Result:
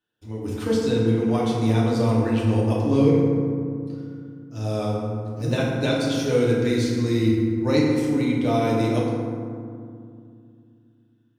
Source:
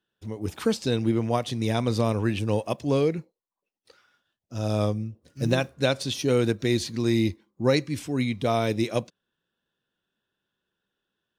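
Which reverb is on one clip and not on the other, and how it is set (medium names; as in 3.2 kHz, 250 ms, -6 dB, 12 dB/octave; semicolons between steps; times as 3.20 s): FDN reverb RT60 2.3 s, low-frequency decay 1.55×, high-frequency decay 0.4×, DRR -5.5 dB; trim -5 dB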